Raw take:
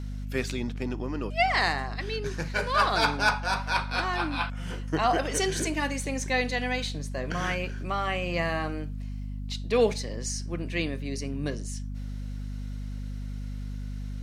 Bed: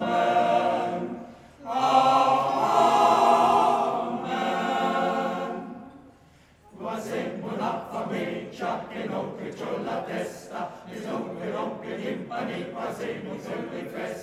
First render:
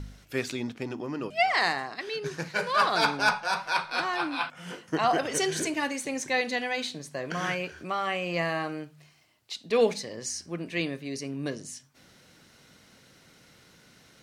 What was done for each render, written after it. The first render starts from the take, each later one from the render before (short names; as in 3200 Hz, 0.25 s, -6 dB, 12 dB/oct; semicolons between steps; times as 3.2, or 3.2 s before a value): de-hum 50 Hz, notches 5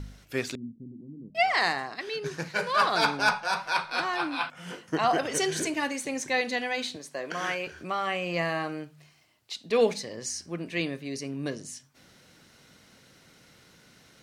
0.55–1.35 ladder low-pass 270 Hz, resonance 40%; 6.96–7.67 HPF 280 Hz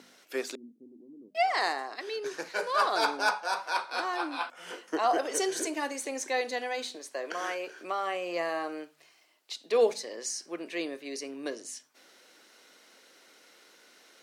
dynamic EQ 2500 Hz, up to -7 dB, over -41 dBFS, Q 0.78; HPF 320 Hz 24 dB/oct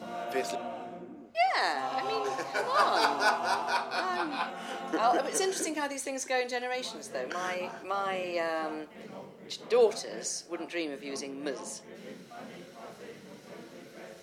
add bed -14.5 dB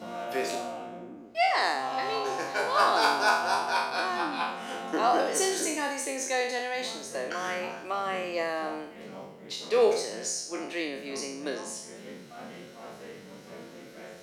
spectral trails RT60 0.67 s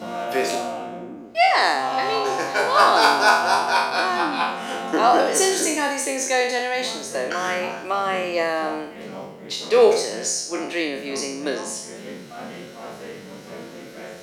gain +8 dB